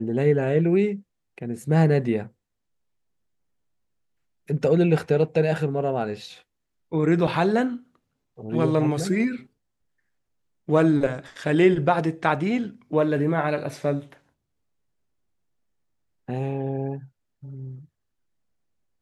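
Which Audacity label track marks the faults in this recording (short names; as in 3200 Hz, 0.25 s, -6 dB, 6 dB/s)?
7.270000	7.270000	gap 4.8 ms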